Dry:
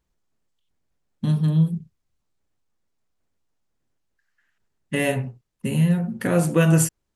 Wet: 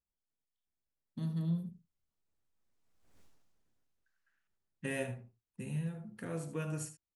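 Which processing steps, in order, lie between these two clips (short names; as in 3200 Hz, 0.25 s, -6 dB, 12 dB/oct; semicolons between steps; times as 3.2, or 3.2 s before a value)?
Doppler pass-by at 3.21, 17 m/s, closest 1.1 m; echo 75 ms -12 dB; gain +13.5 dB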